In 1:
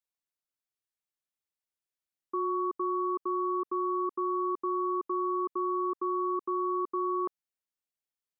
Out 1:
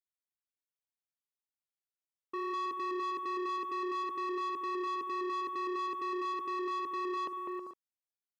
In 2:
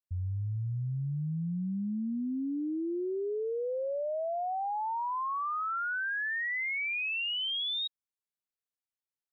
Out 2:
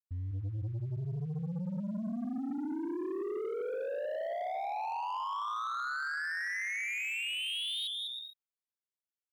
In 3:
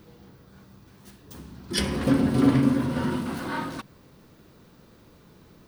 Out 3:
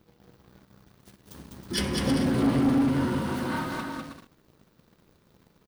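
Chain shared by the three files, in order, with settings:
bouncing-ball echo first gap 0.2 s, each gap 0.6×, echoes 5; sample leveller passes 2; gain -9 dB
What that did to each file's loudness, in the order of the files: -4.5, -3.0, -2.0 LU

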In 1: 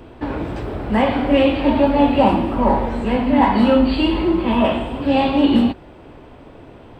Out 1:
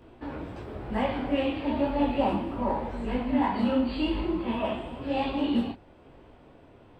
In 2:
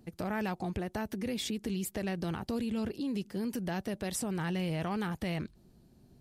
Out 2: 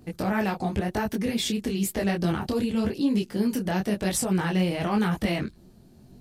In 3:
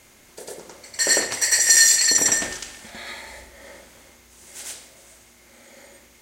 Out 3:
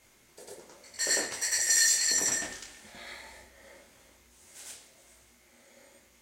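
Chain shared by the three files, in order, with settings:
detuned doubles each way 33 cents; normalise peaks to -12 dBFS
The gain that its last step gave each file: -8.0, +12.0, -6.0 dB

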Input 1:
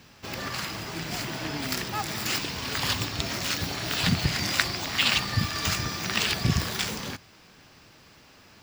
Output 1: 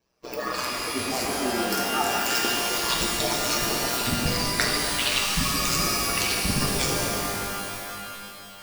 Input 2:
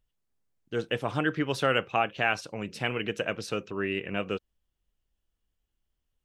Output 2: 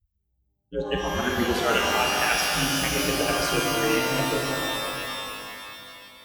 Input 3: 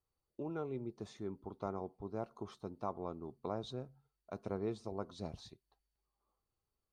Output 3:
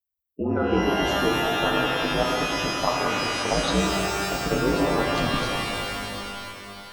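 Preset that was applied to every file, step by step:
per-bin expansion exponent 2; reverse; compressor 5:1, threshold -40 dBFS; reverse; ring modulator 63 Hz; shimmer reverb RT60 2.8 s, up +12 st, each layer -2 dB, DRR -1 dB; match loudness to -24 LUFS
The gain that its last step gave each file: +16.5, +17.0, +22.5 dB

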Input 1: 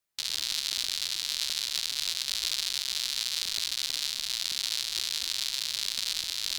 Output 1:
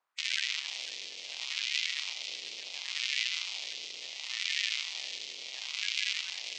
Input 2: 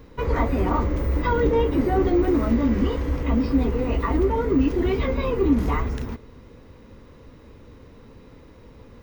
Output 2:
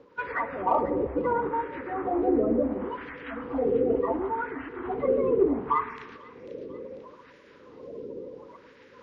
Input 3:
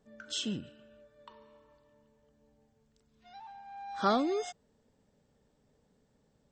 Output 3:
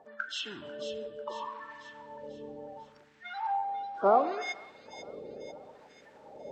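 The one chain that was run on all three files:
bin magnitudes rounded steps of 30 dB; treble ducked by the level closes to 1500 Hz, closed at -17.5 dBFS; reverse; upward compressor, threshold -30 dBFS; reverse; LFO band-pass sine 0.71 Hz 420–1800 Hz; in parallel at -10.5 dB: soft clip -23 dBFS; on the sum: thin delay 0.494 s, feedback 50%, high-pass 3500 Hz, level -6 dB; spring tank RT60 1.1 s, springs 51/55 ms, chirp 50 ms, DRR 12.5 dB; normalise peaks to -12 dBFS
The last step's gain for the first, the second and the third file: +10.0, +3.5, +8.5 dB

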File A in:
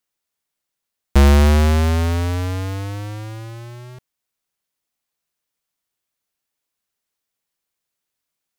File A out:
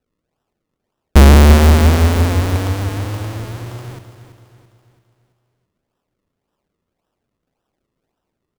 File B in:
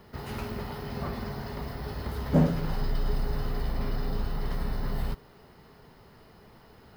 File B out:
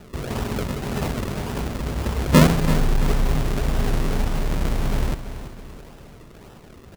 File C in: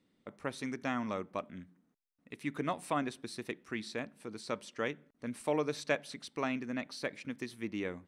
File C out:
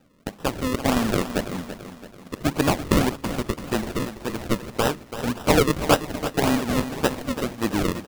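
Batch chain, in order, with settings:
FFT order left unsorted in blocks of 32 samples; decimation with a swept rate 39×, swing 100% 1.8 Hz; feedback echo 0.334 s, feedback 47%, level -11.5 dB; normalise peaks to -3 dBFS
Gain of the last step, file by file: +5.5, +9.0, +14.0 dB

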